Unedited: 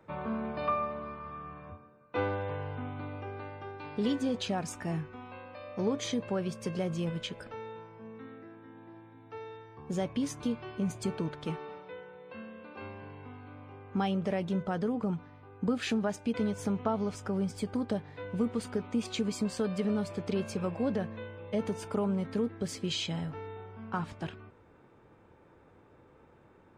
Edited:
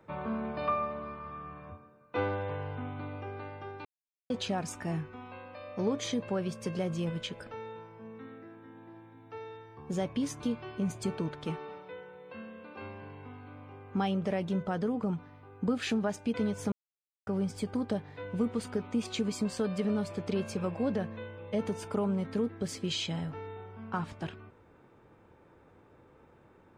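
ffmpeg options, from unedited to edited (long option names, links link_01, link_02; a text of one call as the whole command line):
ffmpeg -i in.wav -filter_complex "[0:a]asplit=5[link_01][link_02][link_03][link_04][link_05];[link_01]atrim=end=3.85,asetpts=PTS-STARTPTS,afade=type=out:start_time=3.846:duration=0.004:curve=hsin[link_06];[link_02]atrim=start=3.85:end=4.3,asetpts=PTS-STARTPTS,volume=0[link_07];[link_03]atrim=start=4.3:end=16.72,asetpts=PTS-STARTPTS,afade=type=in:duration=0.004:curve=hsin,afade=type=out:start_time=12.416:duration=0.004:curve=hsin[link_08];[link_04]atrim=start=16.72:end=17.27,asetpts=PTS-STARTPTS,volume=0[link_09];[link_05]atrim=start=17.27,asetpts=PTS-STARTPTS,afade=type=in:duration=0.004:curve=hsin[link_10];[link_06][link_07][link_08][link_09][link_10]concat=n=5:v=0:a=1" out.wav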